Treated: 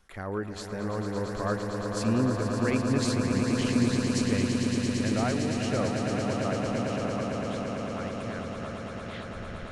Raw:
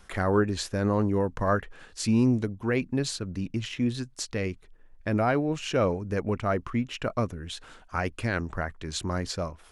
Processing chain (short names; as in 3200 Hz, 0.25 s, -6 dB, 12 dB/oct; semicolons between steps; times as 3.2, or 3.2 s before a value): tape stop at the end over 1.20 s; Doppler pass-by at 3.44, 6 m/s, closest 8.2 m; swelling echo 0.113 s, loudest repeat 8, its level -8 dB; gain -1.5 dB